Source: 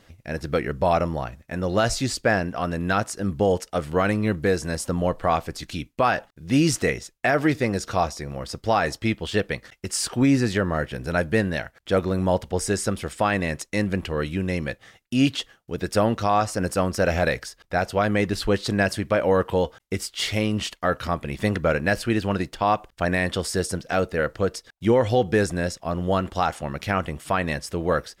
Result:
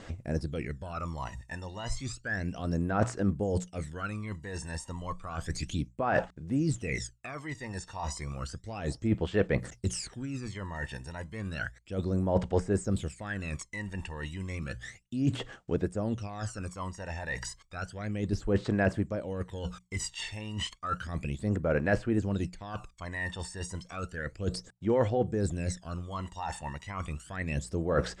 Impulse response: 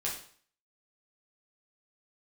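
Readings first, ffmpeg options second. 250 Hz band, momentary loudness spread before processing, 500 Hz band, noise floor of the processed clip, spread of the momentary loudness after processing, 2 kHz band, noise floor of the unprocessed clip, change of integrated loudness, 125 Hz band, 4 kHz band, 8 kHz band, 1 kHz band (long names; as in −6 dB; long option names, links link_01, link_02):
−8.5 dB, 7 LU, −10.5 dB, −58 dBFS, 11 LU, −10.5 dB, −62 dBFS, −9.5 dB, −5.5 dB, −11.5 dB, −9.5 dB, −13.0 dB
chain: -filter_complex "[0:a]acrossover=split=2800[link_01][link_02];[link_02]acompressor=threshold=-43dB:ratio=4:attack=1:release=60[link_03];[link_01][link_03]amix=inputs=2:normalize=0,bandreject=frequency=60:width_type=h:width=6,bandreject=frequency=120:width_type=h:width=6,bandreject=frequency=180:width_type=h:width=6,areverse,acompressor=threshold=-32dB:ratio=12,areverse,aphaser=in_gain=1:out_gain=1:delay=1.1:decay=0.77:speed=0.32:type=sinusoidal,lowpass=frequency=7800:width_type=q:width=3.5,volume=-3dB"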